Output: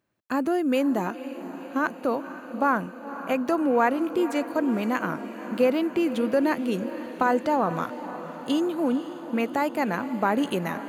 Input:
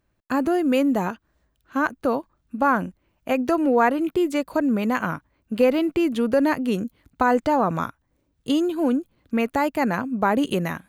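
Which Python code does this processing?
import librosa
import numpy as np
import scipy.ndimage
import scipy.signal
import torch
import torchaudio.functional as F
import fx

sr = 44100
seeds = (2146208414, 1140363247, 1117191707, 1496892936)

p1 = scipy.signal.sosfilt(scipy.signal.butter(2, 150.0, 'highpass', fs=sr, output='sos'), x)
p2 = p1 + fx.echo_diffused(p1, sr, ms=508, feedback_pct=69, wet_db=-13.0, dry=0)
y = p2 * 10.0 ** (-3.0 / 20.0)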